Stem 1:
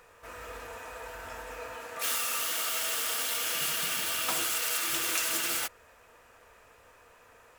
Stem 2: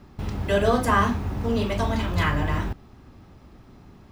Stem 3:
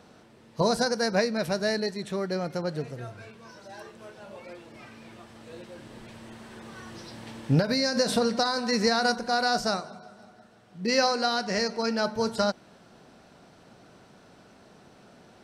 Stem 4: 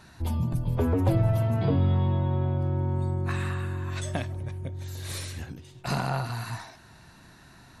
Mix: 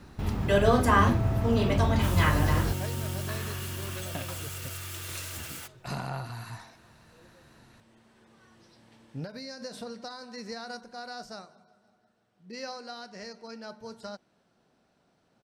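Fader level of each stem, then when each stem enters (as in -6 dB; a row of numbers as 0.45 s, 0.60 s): -10.5 dB, -1.5 dB, -15.5 dB, -6.5 dB; 0.00 s, 0.00 s, 1.65 s, 0.00 s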